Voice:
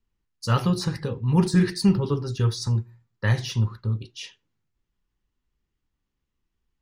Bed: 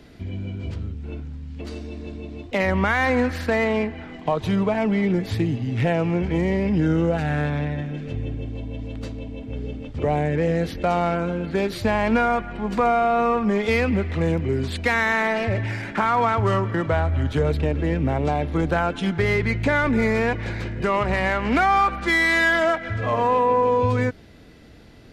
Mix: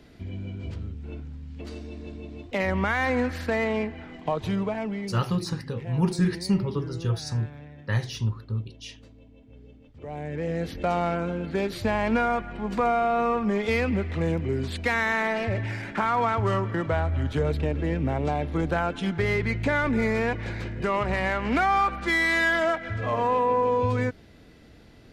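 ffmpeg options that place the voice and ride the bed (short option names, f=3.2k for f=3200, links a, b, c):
-filter_complex "[0:a]adelay=4650,volume=-4dB[a];[1:a]volume=10.5dB,afade=t=out:st=4.45:d=0.83:silence=0.188365,afade=t=in:st=10:d=0.83:silence=0.177828[b];[a][b]amix=inputs=2:normalize=0"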